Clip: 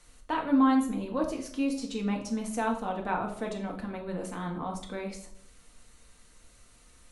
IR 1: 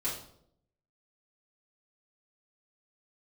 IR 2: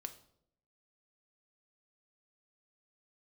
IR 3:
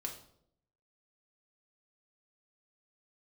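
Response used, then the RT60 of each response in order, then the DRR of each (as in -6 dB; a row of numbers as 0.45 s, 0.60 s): 3; 0.70 s, 0.70 s, 0.70 s; -9.5 dB, 7.0 dB, 0.5 dB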